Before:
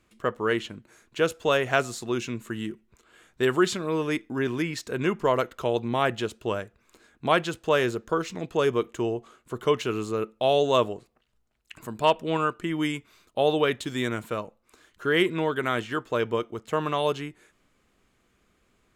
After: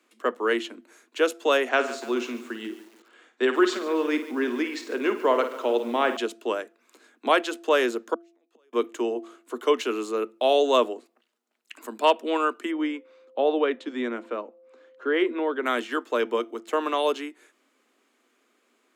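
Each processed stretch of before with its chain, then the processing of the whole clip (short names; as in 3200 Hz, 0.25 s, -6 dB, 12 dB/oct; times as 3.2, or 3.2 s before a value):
1.69–6.17 air absorption 88 m + flutter echo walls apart 9.1 m, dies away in 0.32 s + lo-fi delay 0.144 s, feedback 55%, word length 7-bit, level -15 dB
8.14–8.73 bell 180 Hz -8 dB 1.2 oct + compressor 2:1, threshold -32 dBFS + flipped gate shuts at -31 dBFS, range -34 dB
12.7–15.65 whine 520 Hz -52 dBFS + tape spacing loss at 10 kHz 26 dB
whole clip: steep high-pass 230 Hz 96 dB/oct; de-hum 339.6 Hz, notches 2; gain +1.5 dB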